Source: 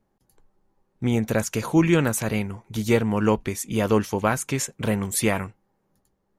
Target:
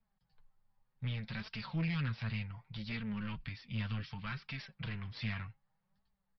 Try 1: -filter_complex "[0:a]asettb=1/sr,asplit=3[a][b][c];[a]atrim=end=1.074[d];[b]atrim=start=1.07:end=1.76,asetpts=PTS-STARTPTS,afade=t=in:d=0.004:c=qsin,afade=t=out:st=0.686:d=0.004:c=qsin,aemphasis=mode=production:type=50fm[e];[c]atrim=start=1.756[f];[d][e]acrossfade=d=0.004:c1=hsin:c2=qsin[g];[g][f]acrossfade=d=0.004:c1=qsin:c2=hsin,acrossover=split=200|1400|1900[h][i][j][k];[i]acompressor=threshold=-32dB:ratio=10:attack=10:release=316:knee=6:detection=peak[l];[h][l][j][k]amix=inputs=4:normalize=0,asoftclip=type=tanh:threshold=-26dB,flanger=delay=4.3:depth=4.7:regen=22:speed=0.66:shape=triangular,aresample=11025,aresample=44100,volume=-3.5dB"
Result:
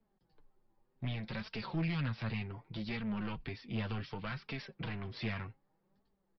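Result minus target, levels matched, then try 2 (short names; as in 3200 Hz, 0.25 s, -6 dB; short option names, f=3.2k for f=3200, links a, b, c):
1000 Hz band +3.0 dB
-filter_complex "[0:a]asettb=1/sr,asplit=3[a][b][c];[a]atrim=end=1.074[d];[b]atrim=start=1.07:end=1.76,asetpts=PTS-STARTPTS,afade=t=in:d=0.004:c=qsin,afade=t=out:st=0.686:d=0.004:c=qsin,aemphasis=mode=production:type=50fm[e];[c]atrim=start=1.756[f];[d][e]acrossfade=d=0.004:c1=hsin:c2=qsin[g];[g][f]acrossfade=d=0.004:c1=qsin:c2=hsin,acrossover=split=200|1400|1900[h][i][j][k];[i]acompressor=threshold=-32dB:ratio=10:attack=10:release=316:knee=6:detection=peak,highpass=910[l];[h][l][j][k]amix=inputs=4:normalize=0,asoftclip=type=tanh:threshold=-26dB,flanger=delay=4.3:depth=4.7:regen=22:speed=0.66:shape=triangular,aresample=11025,aresample=44100,volume=-3.5dB"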